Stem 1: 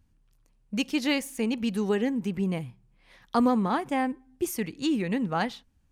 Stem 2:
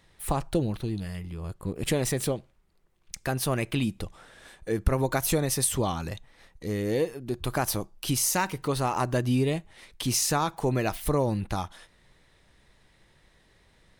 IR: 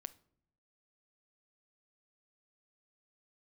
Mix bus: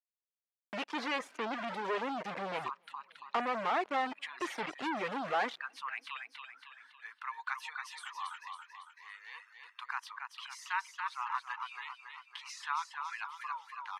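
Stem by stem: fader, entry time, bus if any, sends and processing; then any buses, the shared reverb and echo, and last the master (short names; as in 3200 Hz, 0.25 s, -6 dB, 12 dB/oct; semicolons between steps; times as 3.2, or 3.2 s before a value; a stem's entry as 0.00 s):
-1.0 dB, 0.00 s, send -16 dB, echo send -23.5 dB, companded quantiser 2-bit
-2.5 dB, 2.35 s, no send, echo send -5 dB, elliptic high-pass 980 Hz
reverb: on, pre-delay 7 ms
echo: feedback echo 0.278 s, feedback 50%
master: reverb removal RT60 0.75 s; BPF 600–2200 Hz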